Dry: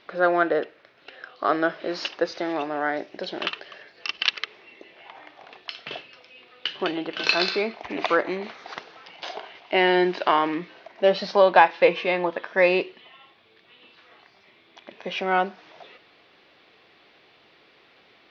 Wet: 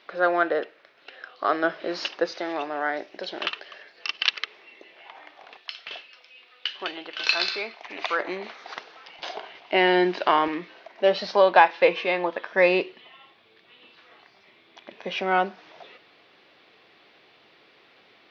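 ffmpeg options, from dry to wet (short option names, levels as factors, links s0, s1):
-af "asetnsamples=n=441:p=0,asendcmd='1.64 highpass f 180;2.34 highpass f 430;5.57 highpass f 1300;8.2 highpass f 410;9.19 highpass f 97;10.48 highpass f 290;12.53 highpass f 97',highpass=f=390:p=1"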